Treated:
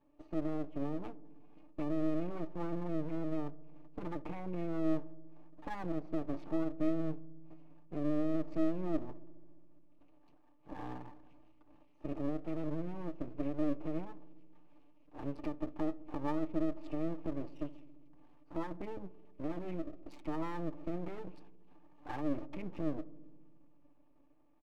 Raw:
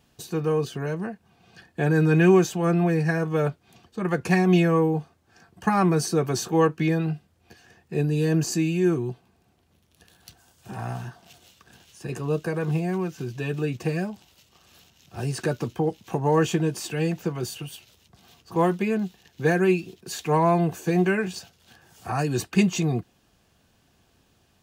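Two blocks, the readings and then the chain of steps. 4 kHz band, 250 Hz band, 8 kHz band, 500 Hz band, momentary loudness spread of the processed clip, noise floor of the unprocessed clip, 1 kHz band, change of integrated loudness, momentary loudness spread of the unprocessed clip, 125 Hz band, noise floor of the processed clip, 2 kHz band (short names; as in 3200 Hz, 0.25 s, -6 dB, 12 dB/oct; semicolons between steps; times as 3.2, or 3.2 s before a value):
under -20 dB, -12.0 dB, under -35 dB, -16.5 dB, 16 LU, -64 dBFS, -17.5 dB, -15.0 dB, 14 LU, -20.0 dB, -62 dBFS, -23.0 dB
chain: Wiener smoothing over 25 samples; HPF 190 Hz 6 dB/oct; treble ducked by the level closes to 1300 Hz, closed at -22.5 dBFS; comb 6.8 ms, depth 81%; compressor, threshold -25 dBFS, peak gain reduction 11 dB; limiter -23 dBFS, peak gain reduction 10 dB; vowel filter u; half-wave rectifier; darkening echo 68 ms, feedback 84%, low-pass 930 Hz, level -18.5 dB; gain +8.5 dB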